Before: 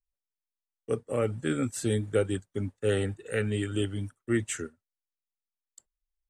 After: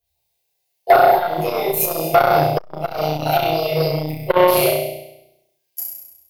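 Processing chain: rotating-head pitch shifter +7.5 st; high-pass 110 Hz 12 dB/octave; peaking EQ 7.7 kHz -5 dB 0.63 oct; compression 20:1, threshold -33 dBFS, peak gain reduction 13.5 dB; flange 0.55 Hz, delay 4.3 ms, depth 8.4 ms, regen -61%; level held to a coarse grid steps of 19 dB; static phaser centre 550 Hz, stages 4; on a send: flutter echo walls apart 5.7 m, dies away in 0.87 s; on the sum: simulated room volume 230 m³, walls furnished, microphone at 5 m; loudness maximiser +31 dB; transformer saturation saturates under 660 Hz

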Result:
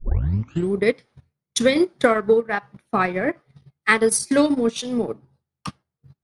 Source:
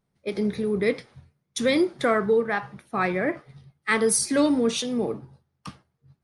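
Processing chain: tape start-up on the opening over 0.76 s; transient shaper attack +7 dB, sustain -12 dB; trim +1.5 dB

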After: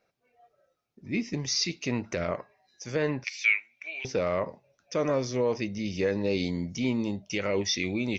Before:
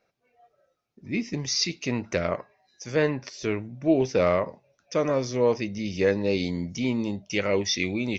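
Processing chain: peak limiter -15 dBFS, peak gain reduction 6.5 dB; 3.24–4.05 s: resonant high-pass 2.3 kHz, resonance Q 9.8; trim -1.5 dB

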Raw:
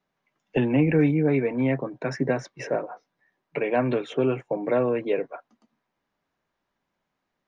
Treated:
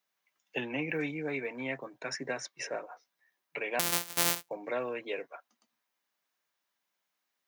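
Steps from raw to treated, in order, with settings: 3.79–4.49 s: sorted samples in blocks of 256 samples; tilt EQ +4.5 dB/octave; trim -7.5 dB

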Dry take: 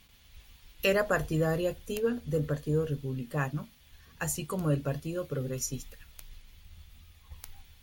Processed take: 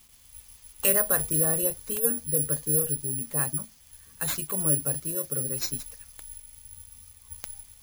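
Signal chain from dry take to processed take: careless resampling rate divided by 4×, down none, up zero stuff; trim -2.5 dB

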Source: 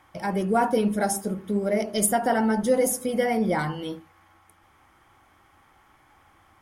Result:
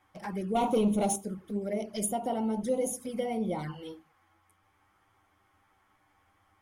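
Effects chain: 0.55–1.16 s: waveshaping leveller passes 2; touch-sensitive flanger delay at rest 10.9 ms, full sweep at -20.5 dBFS; trim -7 dB

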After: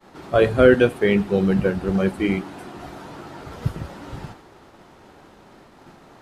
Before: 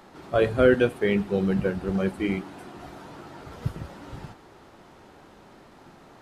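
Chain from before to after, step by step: expander -47 dBFS; trim +5 dB

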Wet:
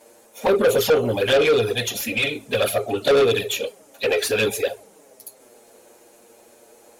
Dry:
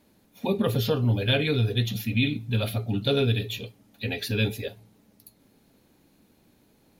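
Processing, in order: ten-band graphic EQ 125 Hz -11 dB, 250 Hz -8 dB, 500 Hz +9 dB, 1 kHz -3 dB, 2 kHz -4 dB, 4 kHz -10 dB, 8 kHz +11 dB; touch-sensitive flanger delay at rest 8.9 ms, full sweep at -20.5 dBFS; overdrive pedal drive 25 dB, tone 4.4 kHz, clips at -10 dBFS; trim +1.5 dB

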